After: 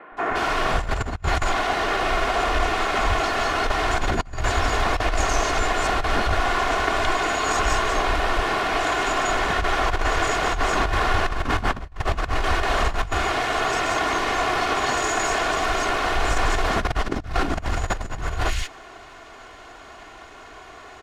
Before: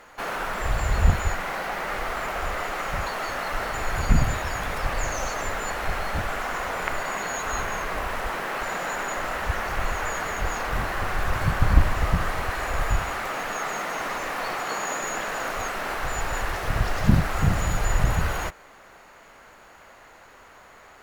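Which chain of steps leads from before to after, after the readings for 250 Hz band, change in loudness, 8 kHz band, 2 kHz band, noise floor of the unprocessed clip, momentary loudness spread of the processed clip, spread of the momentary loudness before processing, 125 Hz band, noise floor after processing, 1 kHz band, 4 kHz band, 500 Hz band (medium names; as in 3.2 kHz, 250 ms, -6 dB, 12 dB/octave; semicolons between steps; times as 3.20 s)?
+2.5 dB, +4.0 dB, +3.0 dB, +4.5 dB, -50 dBFS, 11 LU, 6 LU, -2.5 dB, -43 dBFS, +6.0 dB, +8.5 dB, +6.5 dB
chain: comb filter that takes the minimum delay 2.8 ms; distance through air 63 m; three bands offset in time mids, lows, highs 120/170 ms, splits 160/2100 Hz; compressor with a negative ratio -28 dBFS, ratio -0.5; trim +7.5 dB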